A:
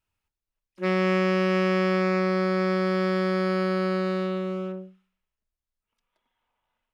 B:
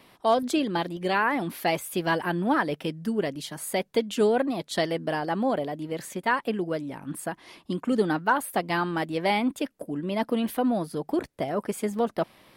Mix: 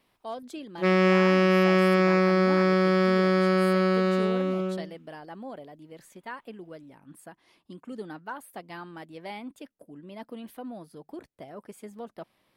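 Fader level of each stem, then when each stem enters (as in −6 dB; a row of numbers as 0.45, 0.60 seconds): +2.5, −14.5 decibels; 0.00, 0.00 seconds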